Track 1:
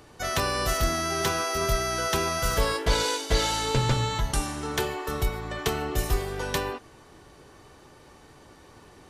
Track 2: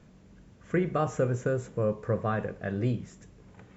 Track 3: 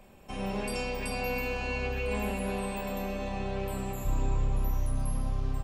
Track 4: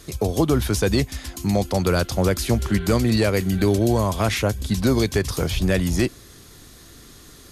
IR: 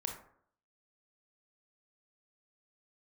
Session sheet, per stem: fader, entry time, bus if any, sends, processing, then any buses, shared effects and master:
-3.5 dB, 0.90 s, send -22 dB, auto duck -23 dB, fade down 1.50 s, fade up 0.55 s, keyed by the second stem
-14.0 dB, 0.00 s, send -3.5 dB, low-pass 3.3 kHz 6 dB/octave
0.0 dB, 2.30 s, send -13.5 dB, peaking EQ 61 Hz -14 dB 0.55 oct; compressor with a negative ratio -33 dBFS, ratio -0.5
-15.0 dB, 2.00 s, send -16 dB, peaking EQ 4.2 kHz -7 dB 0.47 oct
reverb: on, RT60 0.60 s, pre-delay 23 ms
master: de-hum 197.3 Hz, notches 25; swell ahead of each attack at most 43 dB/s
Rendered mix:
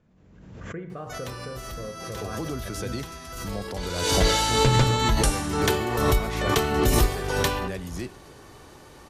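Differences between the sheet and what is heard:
stem 1 -3.5 dB -> +3.0 dB; stem 3: muted; stem 4: missing peaking EQ 4.2 kHz -7 dB 0.47 oct

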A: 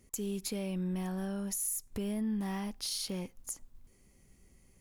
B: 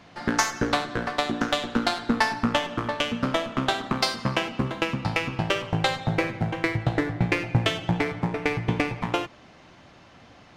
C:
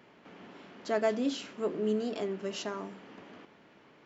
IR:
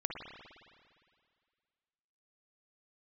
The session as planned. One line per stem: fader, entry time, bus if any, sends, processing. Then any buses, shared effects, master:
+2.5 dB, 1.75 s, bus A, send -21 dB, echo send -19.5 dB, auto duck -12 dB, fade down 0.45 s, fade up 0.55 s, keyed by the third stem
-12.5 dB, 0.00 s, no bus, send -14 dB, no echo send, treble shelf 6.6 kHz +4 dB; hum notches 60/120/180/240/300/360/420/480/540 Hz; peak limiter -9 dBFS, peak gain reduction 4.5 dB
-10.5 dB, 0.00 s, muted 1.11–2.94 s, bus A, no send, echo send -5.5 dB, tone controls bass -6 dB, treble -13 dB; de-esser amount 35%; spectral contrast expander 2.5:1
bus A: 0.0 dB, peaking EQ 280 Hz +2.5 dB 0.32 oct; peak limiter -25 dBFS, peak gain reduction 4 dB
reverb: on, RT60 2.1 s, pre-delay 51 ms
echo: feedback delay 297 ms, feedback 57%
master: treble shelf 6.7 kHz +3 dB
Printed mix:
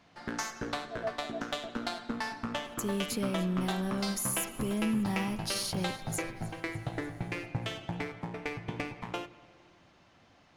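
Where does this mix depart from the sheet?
stem A: entry 1.75 s -> 2.65 s; master: missing treble shelf 6.7 kHz +3 dB

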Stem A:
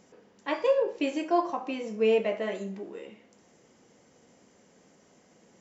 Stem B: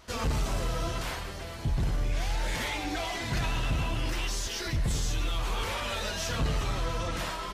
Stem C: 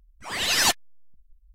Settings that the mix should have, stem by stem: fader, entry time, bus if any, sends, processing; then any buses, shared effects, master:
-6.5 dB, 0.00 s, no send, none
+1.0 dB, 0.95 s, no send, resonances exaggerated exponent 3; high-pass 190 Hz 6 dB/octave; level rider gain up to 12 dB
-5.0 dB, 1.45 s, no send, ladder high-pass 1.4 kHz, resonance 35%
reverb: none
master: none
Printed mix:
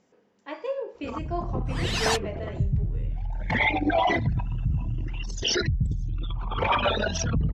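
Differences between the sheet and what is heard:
stem C: missing ladder high-pass 1.4 kHz, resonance 35%; master: extra distance through air 54 m

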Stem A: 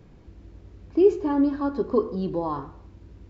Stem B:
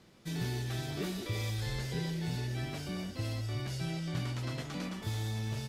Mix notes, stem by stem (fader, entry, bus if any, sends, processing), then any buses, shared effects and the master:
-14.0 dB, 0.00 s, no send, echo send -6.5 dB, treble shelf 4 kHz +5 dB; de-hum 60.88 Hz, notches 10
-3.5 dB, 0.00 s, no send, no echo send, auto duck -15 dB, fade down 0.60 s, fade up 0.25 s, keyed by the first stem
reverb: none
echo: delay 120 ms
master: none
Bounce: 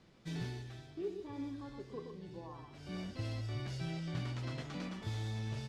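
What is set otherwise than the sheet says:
stem A -14.0 dB -> -22.5 dB; master: extra distance through air 62 m

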